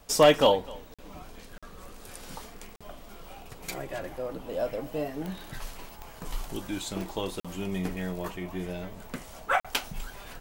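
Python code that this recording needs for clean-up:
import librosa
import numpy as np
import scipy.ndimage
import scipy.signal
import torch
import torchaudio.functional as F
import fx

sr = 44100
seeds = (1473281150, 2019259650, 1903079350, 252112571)

y = fx.fix_declip(x, sr, threshold_db=-10.5)
y = fx.fix_declick_ar(y, sr, threshold=10.0)
y = fx.fix_interpolate(y, sr, at_s=(0.94, 1.58, 2.76, 7.4, 9.6), length_ms=46.0)
y = fx.fix_echo_inverse(y, sr, delay_ms=249, level_db=-22.5)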